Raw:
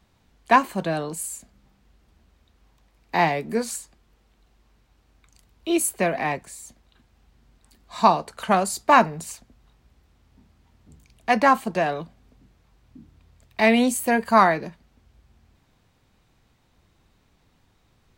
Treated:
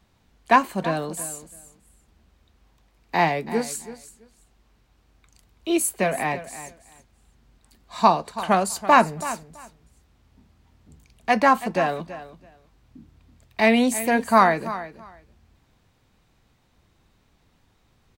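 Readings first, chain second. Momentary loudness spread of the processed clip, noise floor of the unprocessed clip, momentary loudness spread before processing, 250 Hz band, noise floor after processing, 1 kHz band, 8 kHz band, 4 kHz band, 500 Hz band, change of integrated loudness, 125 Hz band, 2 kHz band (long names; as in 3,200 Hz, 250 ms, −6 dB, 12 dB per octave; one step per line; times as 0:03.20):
20 LU, −64 dBFS, 19 LU, 0.0 dB, −64 dBFS, 0.0 dB, 0.0 dB, 0.0 dB, 0.0 dB, 0.0 dB, 0.0 dB, 0.0 dB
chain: repeating echo 330 ms, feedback 17%, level −14.5 dB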